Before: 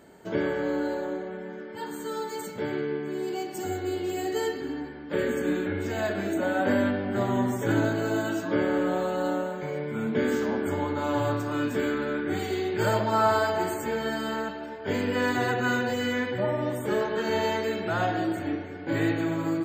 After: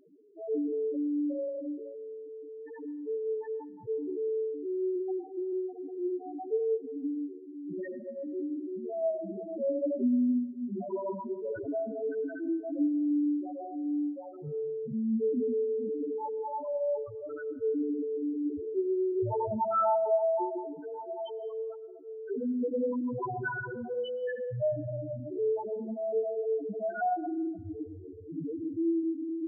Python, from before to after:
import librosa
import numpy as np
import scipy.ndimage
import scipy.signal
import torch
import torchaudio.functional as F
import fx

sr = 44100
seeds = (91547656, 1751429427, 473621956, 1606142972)

y = fx.stretch_vocoder_free(x, sr, factor=1.5)
y = fx.spec_topn(y, sr, count=2)
y = fx.rev_freeverb(y, sr, rt60_s=1.1, hf_ratio=0.55, predelay_ms=75, drr_db=18.0)
y = F.gain(torch.from_numpy(y), 2.0).numpy()